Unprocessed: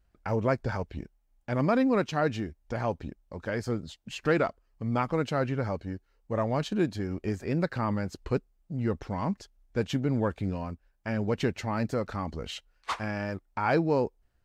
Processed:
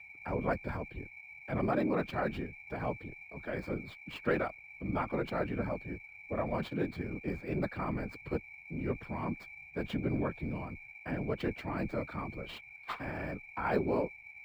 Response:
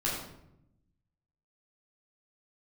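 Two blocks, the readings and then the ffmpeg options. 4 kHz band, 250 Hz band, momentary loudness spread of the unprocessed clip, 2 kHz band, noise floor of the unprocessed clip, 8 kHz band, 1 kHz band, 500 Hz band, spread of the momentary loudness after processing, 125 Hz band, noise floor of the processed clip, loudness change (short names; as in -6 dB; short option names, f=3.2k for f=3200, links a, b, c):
-9.0 dB, -6.0 dB, 13 LU, -3.5 dB, -70 dBFS, under -15 dB, -5.5 dB, -6.0 dB, 11 LU, -7.5 dB, -53 dBFS, -6.0 dB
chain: -filter_complex "[0:a]aeval=exprs='val(0)+0.00794*sin(2*PI*2300*n/s)':c=same,afftfilt=real='hypot(re,im)*cos(2*PI*random(0))':imag='hypot(re,im)*sin(2*PI*random(1))':win_size=512:overlap=0.75,afreqshift=15,acrossover=split=200|4300[a][b][c];[c]acrusher=samples=14:mix=1:aa=0.000001[d];[a][b][d]amix=inputs=3:normalize=0"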